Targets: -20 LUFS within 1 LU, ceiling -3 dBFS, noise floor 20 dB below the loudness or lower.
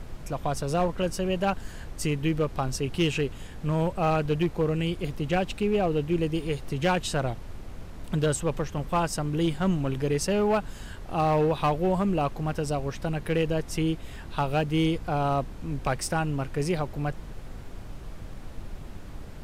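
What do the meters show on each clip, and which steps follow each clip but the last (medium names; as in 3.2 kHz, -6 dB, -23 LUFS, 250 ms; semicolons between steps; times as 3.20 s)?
clipped samples 0.7%; clipping level -17.5 dBFS; noise floor -41 dBFS; noise floor target -48 dBFS; loudness -27.5 LUFS; peak level -17.5 dBFS; loudness target -20.0 LUFS
-> clip repair -17.5 dBFS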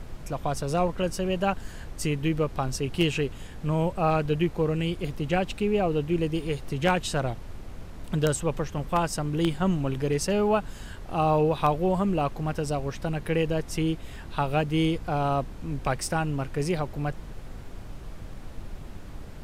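clipped samples 0.0%; noise floor -41 dBFS; noise floor target -48 dBFS
-> noise print and reduce 7 dB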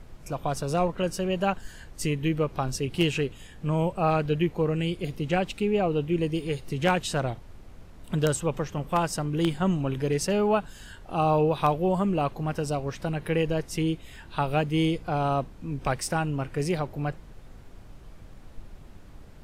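noise floor -47 dBFS; noise floor target -48 dBFS
-> noise print and reduce 6 dB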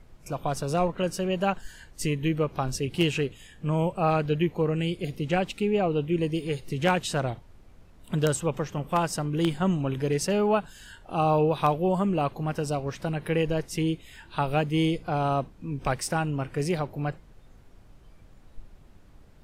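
noise floor -52 dBFS; loudness -27.5 LUFS; peak level -8.5 dBFS; loudness target -20.0 LUFS
-> trim +7.5 dB; peak limiter -3 dBFS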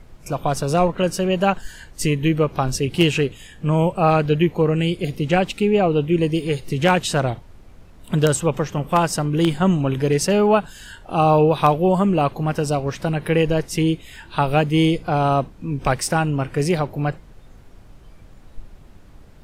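loudness -20.0 LUFS; peak level -3.0 dBFS; noise floor -45 dBFS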